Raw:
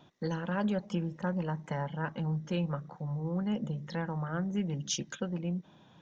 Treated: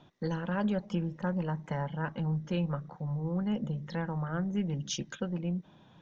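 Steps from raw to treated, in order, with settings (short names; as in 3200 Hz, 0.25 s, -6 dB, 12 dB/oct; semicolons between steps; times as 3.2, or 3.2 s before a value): Bessel low-pass 5800 Hz; low shelf 62 Hz +9 dB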